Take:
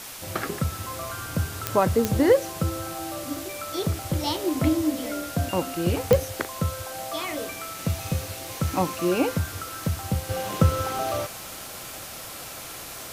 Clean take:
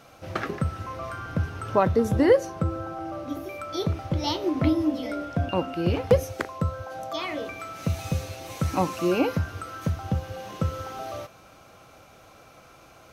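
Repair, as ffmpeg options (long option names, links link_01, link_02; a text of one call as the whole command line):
ffmpeg -i in.wav -af "adeclick=threshold=4,afwtdn=0.013,asetnsamples=nb_out_samples=441:pad=0,asendcmd='10.29 volume volume -7.5dB',volume=0dB" out.wav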